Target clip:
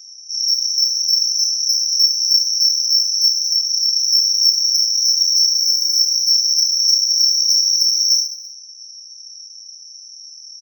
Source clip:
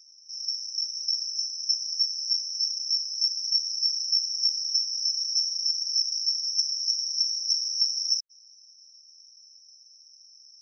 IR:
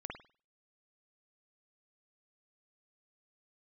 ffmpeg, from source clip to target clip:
-filter_complex "[0:a]highshelf=f=5.6k:g=-11.5,bandreject=f=5.2k:w=14,asplit=2[a][b];[b]alimiter=level_in=3dB:limit=-24dB:level=0:latency=1:release=303,volume=-3dB,volume=2dB[c];[a][c]amix=inputs=2:normalize=0,asettb=1/sr,asplit=3[d][e][f];[d]atrim=end=3.434[g];[e]atrim=start=3.43:end=4,asetpts=PTS-STARTPTS,afade=t=in:d=0.004:c=qsin,afade=t=out:st=0.566:d=0.004:c=qsin,acompressor=threshold=-28dB:ratio=6[h];[f]atrim=start=3.996[i];[g][h]acrossfade=d=0.004:c1=hsin:c2=qsin[j];[j][i]acrossfade=d=0.004:c1=qsin:c2=hsin,asplit=2[k][l];[l]highpass=f=720:p=1,volume=11dB,asoftclip=type=tanh:threshold=-14.5dB[m];[k][m]amix=inputs=2:normalize=0,lowpass=f=5.1k:p=1,volume=-6dB,asplit=3[n][o][p];[n]afade=t=out:st=5.56:d=0.02[q];[o]aeval=exprs='sgn(val(0))*max(abs(val(0))-0.00562,0)':c=same,afade=t=in:st=5.56:d=0.02,afade=t=out:st=5.98:d=0.02[r];[p]afade=t=in:st=5.98:d=0.02[s];[q][r][s]amix=inputs=3:normalize=0,aexciter=amount=3.7:drive=5:freq=5.6k,aecho=1:1:30|72|130.8|213.1|328.4:0.631|0.398|0.251|0.158|0.1,asplit=2[t][u];[1:a]atrim=start_sample=2205,adelay=32[v];[u][v]afir=irnorm=-1:irlink=0,volume=-5dB[w];[t][w]amix=inputs=2:normalize=0,volume=2.5dB"

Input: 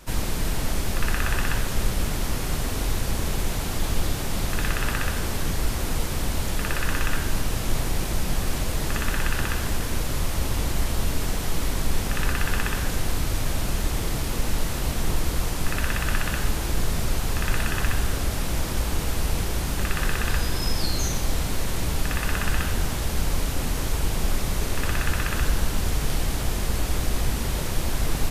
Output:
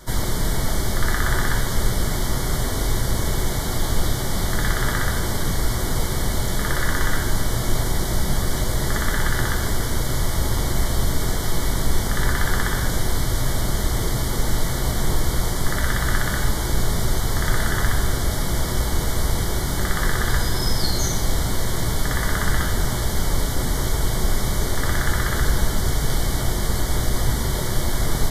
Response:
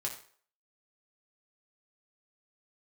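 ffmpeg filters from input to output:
-filter_complex "[0:a]asuperstop=centerf=2600:order=8:qfactor=3.6,asplit=2[a][b];[1:a]atrim=start_sample=2205[c];[b][c]afir=irnorm=-1:irlink=0,volume=-3.5dB[d];[a][d]amix=inputs=2:normalize=0"

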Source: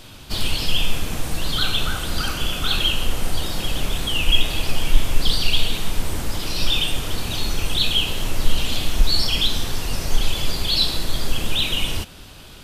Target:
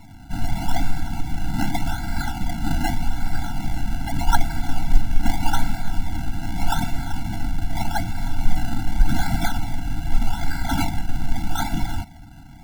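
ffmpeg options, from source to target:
-filter_complex "[0:a]asettb=1/sr,asplit=3[a][b][c];[a]atrim=end=7.364[d];[b]atrim=start=7.36:end=8.15,asetpts=PTS-STARTPTS,afade=t=in:d=0.004:c=qsin,afade=t=out:st=0.786:d=0.004:c=qsin,lowpass=f=3.3k:p=1[e];[c]atrim=start=8.146[f];[d][e]acrossfade=d=0.004:c1=hsin:c2=qsin[g];[g][f]acrossfade=d=0.004:c1=qsin:c2=hsin,acrusher=samples=27:mix=1:aa=0.000001:lfo=1:lforange=27:lforate=0.83,afftfilt=real='re*eq(mod(floor(b*sr/1024/330),2),0)':imag='im*eq(mod(floor(b*sr/1024/330),2),0)':win_size=1024:overlap=0.75"

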